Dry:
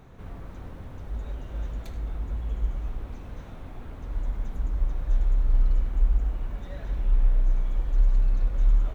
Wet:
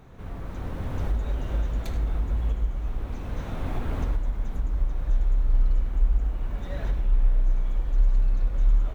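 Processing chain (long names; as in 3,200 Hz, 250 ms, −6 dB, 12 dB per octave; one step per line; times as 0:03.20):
camcorder AGC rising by 11 dB per second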